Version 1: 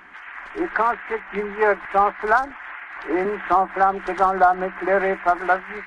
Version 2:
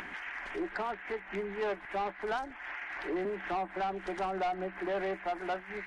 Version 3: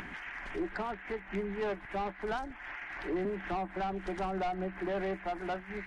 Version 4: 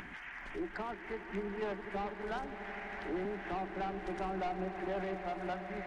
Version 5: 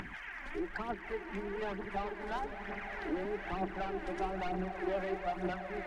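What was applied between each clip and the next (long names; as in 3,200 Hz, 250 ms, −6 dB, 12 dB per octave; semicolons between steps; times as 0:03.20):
parametric band 1,200 Hz −8.5 dB 0.87 octaves; upward compression, threshold −22 dBFS; soft clipping −19.5 dBFS, distortion −11 dB; level −8.5 dB
bass and treble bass +11 dB, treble +1 dB; level −2 dB
echo that builds up and dies away 82 ms, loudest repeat 8, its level −16.5 dB; level −4 dB
phase shifter 1.1 Hz, delay 3.8 ms, feedback 53%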